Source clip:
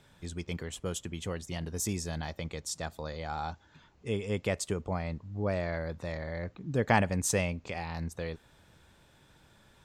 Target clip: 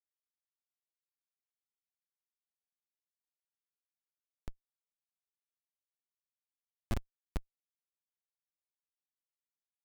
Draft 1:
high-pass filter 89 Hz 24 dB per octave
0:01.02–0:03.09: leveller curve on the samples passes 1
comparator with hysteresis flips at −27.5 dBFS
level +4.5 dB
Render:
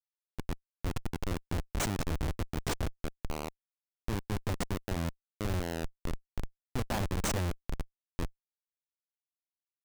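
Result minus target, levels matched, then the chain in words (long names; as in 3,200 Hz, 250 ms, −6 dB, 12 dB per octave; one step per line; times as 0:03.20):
comparator with hysteresis: distortion −15 dB
high-pass filter 89 Hz 24 dB per octave
0:01.02–0:03.09: leveller curve on the samples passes 1
comparator with hysteresis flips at −17 dBFS
level +4.5 dB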